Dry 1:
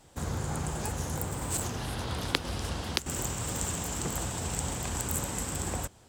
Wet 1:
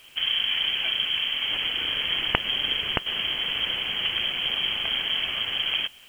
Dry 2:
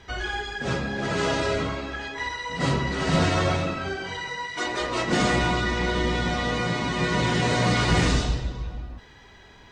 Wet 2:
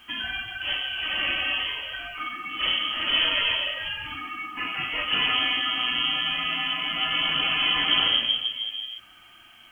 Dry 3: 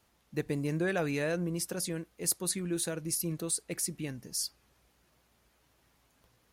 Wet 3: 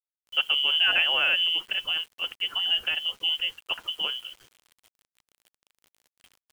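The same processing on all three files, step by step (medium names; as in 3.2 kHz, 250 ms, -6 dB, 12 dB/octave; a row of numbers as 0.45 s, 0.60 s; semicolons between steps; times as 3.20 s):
frequency inversion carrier 3.2 kHz; word length cut 10-bit, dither none; normalise loudness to -24 LUFS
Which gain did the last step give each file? +7.0 dB, -2.0 dB, +8.0 dB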